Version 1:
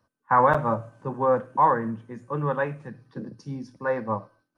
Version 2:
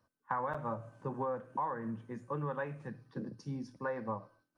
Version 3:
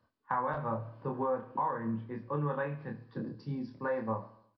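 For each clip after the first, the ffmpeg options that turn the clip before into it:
-af "acompressor=threshold=-29dB:ratio=6,volume=-4.5dB"
-filter_complex "[0:a]asplit=2[a][b];[b]adelay=27,volume=-4dB[c];[a][c]amix=inputs=2:normalize=0,aecho=1:1:71|142|213|284|355:0.133|0.0733|0.0403|0.0222|0.0122,aresample=11025,aresample=44100,volume=1.5dB"

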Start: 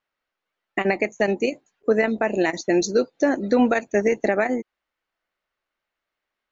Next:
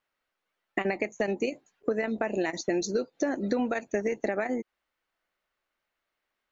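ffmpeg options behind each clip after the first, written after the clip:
-af "acompressor=threshold=-25dB:ratio=6"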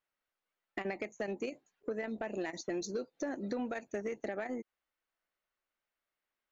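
-af "asoftclip=type=tanh:threshold=-18dB,volume=-8dB"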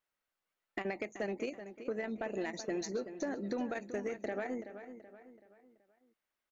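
-filter_complex "[0:a]asplit=2[a][b];[b]adelay=379,lowpass=f=4k:p=1,volume=-11dB,asplit=2[c][d];[d]adelay=379,lowpass=f=4k:p=1,volume=0.43,asplit=2[e][f];[f]adelay=379,lowpass=f=4k:p=1,volume=0.43,asplit=2[g][h];[h]adelay=379,lowpass=f=4k:p=1,volume=0.43[i];[a][c][e][g][i]amix=inputs=5:normalize=0"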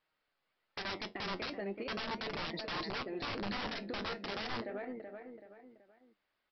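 -af "aresample=11025,aeval=exprs='(mod(53.1*val(0)+1,2)-1)/53.1':c=same,aresample=44100,alimiter=level_in=14.5dB:limit=-24dB:level=0:latency=1:release=109,volume=-14.5dB,flanger=delay=6.3:depth=4.7:regen=67:speed=0.38:shape=sinusoidal,volume=11.5dB"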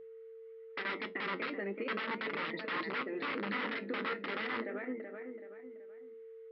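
-af "highpass=f=180:w=0.5412,highpass=f=180:w=1.3066,equalizer=f=260:t=q:w=4:g=6,equalizer=f=490:t=q:w=4:g=4,equalizer=f=710:t=q:w=4:g=-8,equalizer=f=1.3k:t=q:w=4:g=6,equalizer=f=2k:t=q:w=4:g=8,lowpass=f=3.4k:w=0.5412,lowpass=f=3.4k:w=1.3066,aeval=exprs='val(0)+0.00398*sin(2*PI*450*n/s)':c=same,bandreject=f=60:t=h:w=6,bandreject=f=120:t=h:w=6,bandreject=f=180:t=h:w=6,bandreject=f=240:t=h:w=6"

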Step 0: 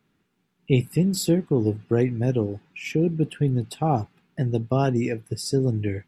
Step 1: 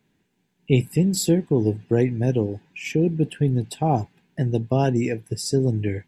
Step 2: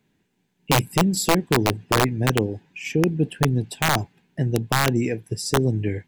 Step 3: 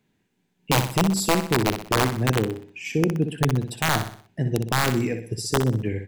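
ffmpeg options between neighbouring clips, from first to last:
-af "superequalizer=10b=0.355:15b=1.41,volume=1.5dB"
-af "aeval=exprs='(mod(3.35*val(0)+1,2)-1)/3.35':c=same"
-af "aecho=1:1:62|124|186|248|310:0.376|0.158|0.0663|0.0278|0.0117,volume=-2dB"

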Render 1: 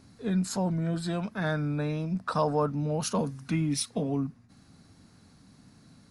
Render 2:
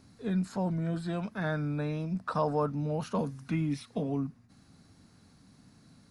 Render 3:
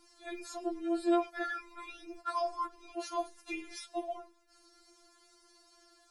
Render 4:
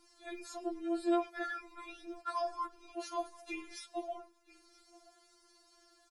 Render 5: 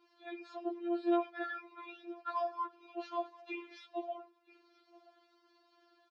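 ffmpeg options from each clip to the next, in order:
-filter_complex "[0:a]acrossover=split=2900[a][b];[b]acompressor=threshold=-49dB:ratio=4:attack=1:release=60[c];[a][c]amix=inputs=2:normalize=0,volume=-2.5dB"
-af "equalizer=f=6.8k:w=0.52:g=3.5,afftfilt=real='re*4*eq(mod(b,16),0)':imag='im*4*eq(mod(b,16),0)':win_size=2048:overlap=0.75,volume=2.5dB"
-af "aecho=1:1:978:0.0794,volume=-2.5dB"
-af "afftfilt=real='hypot(re,im)*cos(PI*b)':imag='0':win_size=512:overlap=0.75,highpass=260,equalizer=f=560:t=q:w=4:g=-5,equalizer=f=1.3k:t=q:w=4:g=-3,equalizer=f=2k:t=q:w=4:g=-6,lowpass=f=3.5k:w=0.5412,lowpass=f=3.5k:w=1.3066,volume=2dB"

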